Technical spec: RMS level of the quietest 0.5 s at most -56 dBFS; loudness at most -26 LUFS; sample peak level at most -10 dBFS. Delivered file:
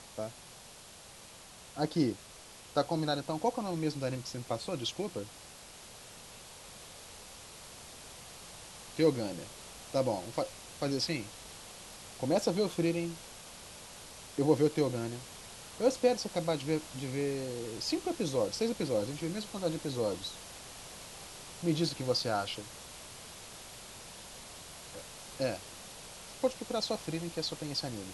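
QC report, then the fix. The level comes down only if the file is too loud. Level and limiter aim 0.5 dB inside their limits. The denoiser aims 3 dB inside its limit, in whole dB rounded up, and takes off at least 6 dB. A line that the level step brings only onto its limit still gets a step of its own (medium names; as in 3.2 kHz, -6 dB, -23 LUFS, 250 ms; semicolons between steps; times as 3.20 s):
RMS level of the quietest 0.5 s -52 dBFS: fail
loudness -34.0 LUFS: pass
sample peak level -13.0 dBFS: pass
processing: noise reduction 7 dB, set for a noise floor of -52 dBFS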